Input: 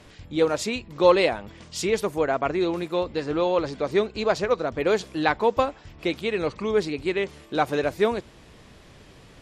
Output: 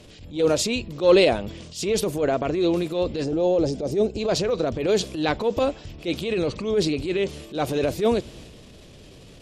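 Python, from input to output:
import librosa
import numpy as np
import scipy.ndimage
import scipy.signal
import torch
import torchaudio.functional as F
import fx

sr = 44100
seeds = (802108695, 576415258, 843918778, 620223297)

y = fx.band_shelf(x, sr, hz=1300.0, db=-8.5, octaves=1.7)
y = fx.transient(y, sr, attack_db=-10, sustain_db=5)
y = fx.spec_box(y, sr, start_s=3.24, length_s=0.96, low_hz=890.0, high_hz=4800.0, gain_db=-9)
y = F.gain(torch.from_numpy(y), 4.0).numpy()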